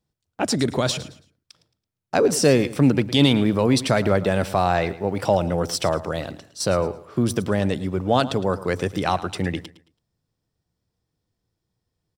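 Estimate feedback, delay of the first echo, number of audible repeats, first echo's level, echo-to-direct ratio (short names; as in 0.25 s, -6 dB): 29%, 0.11 s, 2, -16.0 dB, -15.5 dB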